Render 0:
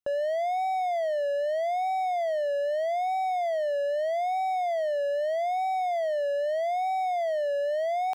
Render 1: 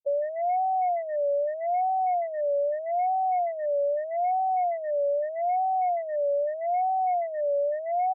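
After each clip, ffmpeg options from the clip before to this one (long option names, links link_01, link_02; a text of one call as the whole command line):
ffmpeg -i in.wav -af "aecho=1:1:5.5:0.55,afftfilt=real='re*gte(hypot(re,im),0.0794)':imag='im*gte(hypot(re,im),0.0794)':win_size=1024:overlap=0.75,highshelf=frequency=2400:gain=-7" out.wav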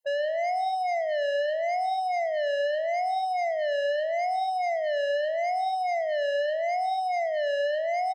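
ffmpeg -i in.wav -af "aeval=exprs='(tanh(56.2*val(0)+0.05)-tanh(0.05))/56.2':channel_layout=same,aecho=1:1:116|208:0.211|0.168,afftfilt=real='re*eq(mod(floor(b*sr/1024/540),2),1)':imag='im*eq(mod(floor(b*sr/1024/540),2),1)':win_size=1024:overlap=0.75,volume=9dB" out.wav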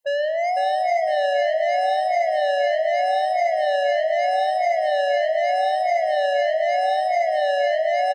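ffmpeg -i in.wav -af "aecho=1:1:504|1008|1512|2016:0.631|0.177|0.0495|0.0139,volume=5dB" out.wav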